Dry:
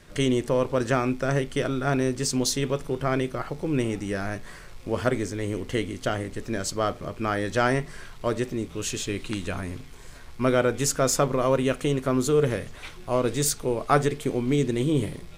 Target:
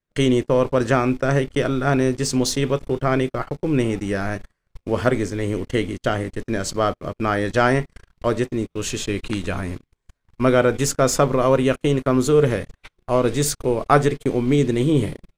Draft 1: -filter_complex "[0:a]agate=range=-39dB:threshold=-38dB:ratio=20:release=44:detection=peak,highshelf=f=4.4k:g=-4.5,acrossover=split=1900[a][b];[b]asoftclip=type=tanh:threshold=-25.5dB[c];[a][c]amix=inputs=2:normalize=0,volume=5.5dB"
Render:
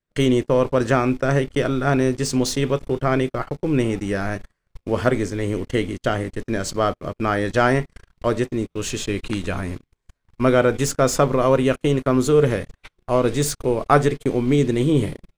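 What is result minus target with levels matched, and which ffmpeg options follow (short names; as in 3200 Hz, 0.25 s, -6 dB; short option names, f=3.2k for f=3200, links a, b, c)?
soft clip: distortion +9 dB
-filter_complex "[0:a]agate=range=-39dB:threshold=-38dB:ratio=20:release=44:detection=peak,highshelf=f=4.4k:g=-4.5,acrossover=split=1900[a][b];[b]asoftclip=type=tanh:threshold=-18.5dB[c];[a][c]amix=inputs=2:normalize=0,volume=5.5dB"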